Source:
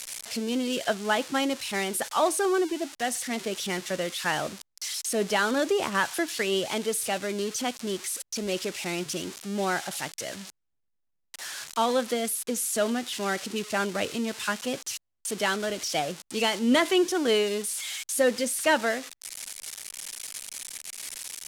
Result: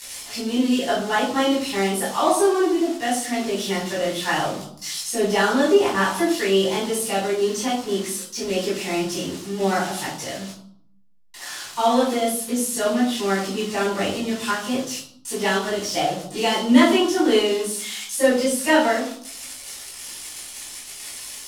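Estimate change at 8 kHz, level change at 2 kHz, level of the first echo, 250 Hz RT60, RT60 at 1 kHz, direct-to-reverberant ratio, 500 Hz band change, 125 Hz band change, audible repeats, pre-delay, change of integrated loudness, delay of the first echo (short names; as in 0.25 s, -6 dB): +3.0 dB, +4.0 dB, none, 0.90 s, 0.60 s, -8.0 dB, +6.5 dB, +7.5 dB, none, 7 ms, +6.5 dB, none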